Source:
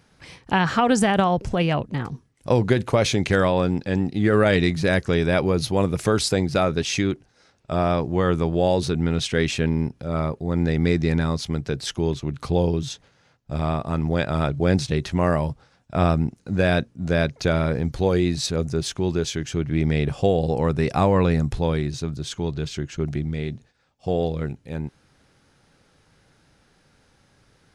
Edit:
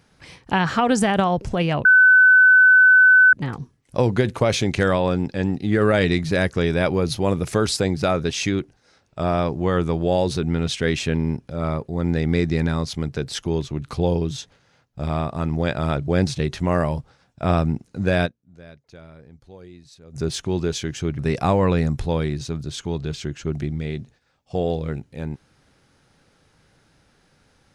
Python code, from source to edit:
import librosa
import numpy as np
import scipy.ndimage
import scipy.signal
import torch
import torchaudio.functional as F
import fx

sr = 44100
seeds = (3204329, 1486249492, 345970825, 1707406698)

y = fx.edit(x, sr, fx.insert_tone(at_s=1.85, length_s=1.48, hz=1510.0, db=-8.5),
    fx.fade_down_up(start_s=16.77, length_s=1.92, db=-23.0, fade_s=0.21, curve='exp'),
    fx.cut(start_s=19.71, length_s=1.01), tone=tone)